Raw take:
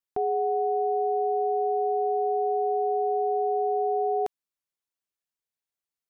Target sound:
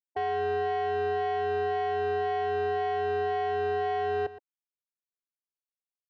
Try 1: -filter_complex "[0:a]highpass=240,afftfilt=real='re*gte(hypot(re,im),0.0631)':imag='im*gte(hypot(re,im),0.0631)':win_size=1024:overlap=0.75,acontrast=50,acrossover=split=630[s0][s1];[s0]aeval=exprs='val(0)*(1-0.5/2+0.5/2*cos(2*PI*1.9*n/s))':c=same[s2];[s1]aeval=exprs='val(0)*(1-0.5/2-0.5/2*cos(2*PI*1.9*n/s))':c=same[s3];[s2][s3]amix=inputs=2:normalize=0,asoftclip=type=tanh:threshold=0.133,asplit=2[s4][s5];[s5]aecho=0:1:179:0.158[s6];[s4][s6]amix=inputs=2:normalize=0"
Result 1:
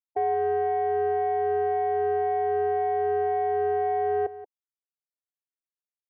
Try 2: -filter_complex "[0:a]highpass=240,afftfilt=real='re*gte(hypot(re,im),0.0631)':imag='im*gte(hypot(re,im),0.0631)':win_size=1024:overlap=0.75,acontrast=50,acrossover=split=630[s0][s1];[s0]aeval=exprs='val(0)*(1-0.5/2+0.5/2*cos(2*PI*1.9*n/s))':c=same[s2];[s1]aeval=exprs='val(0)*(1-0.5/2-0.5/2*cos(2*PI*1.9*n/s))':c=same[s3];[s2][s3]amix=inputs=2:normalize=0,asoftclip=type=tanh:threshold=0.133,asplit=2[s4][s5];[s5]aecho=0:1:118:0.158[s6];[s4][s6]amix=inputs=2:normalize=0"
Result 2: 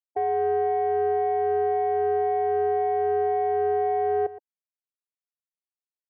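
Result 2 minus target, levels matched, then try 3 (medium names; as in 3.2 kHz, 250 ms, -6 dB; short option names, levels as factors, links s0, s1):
saturation: distortion -11 dB
-filter_complex "[0:a]highpass=240,afftfilt=real='re*gte(hypot(re,im),0.0631)':imag='im*gte(hypot(re,im),0.0631)':win_size=1024:overlap=0.75,acontrast=50,acrossover=split=630[s0][s1];[s0]aeval=exprs='val(0)*(1-0.5/2+0.5/2*cos(2*PI*1.9*n/s))':c=same[s2];[s1]aeval=exprs='val(0)*(1-0.5/2-0.5/2*cos(2*PI*1.9*n/s))':c=same[s3];[s2][s3]amix=inputs=2:normalize=0,asoftclip=type=tanh:threshold=0.0473,asplit=2[s4][s5];[s5]aecho=0:1:118:0.158[s6];[s4][s6]amix=inputs=2:normalize=0"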